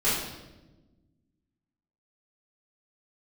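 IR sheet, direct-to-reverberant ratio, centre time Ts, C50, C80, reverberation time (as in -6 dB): -13.5 dB, 66 ms, 1.0 dB, 4.0 dB, 1.1 s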